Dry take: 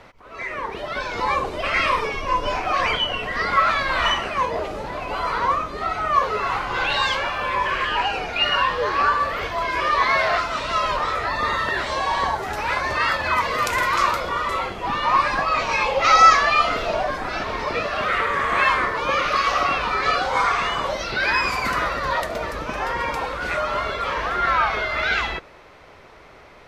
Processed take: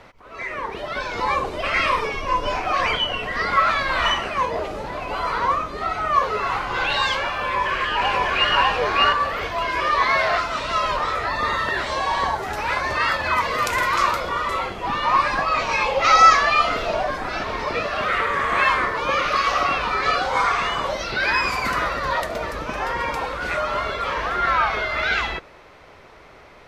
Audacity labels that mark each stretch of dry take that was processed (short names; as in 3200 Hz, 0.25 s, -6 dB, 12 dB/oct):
7.410000	8.520000	echo throw 0.6 s, feedback 15%, level -0.5 dB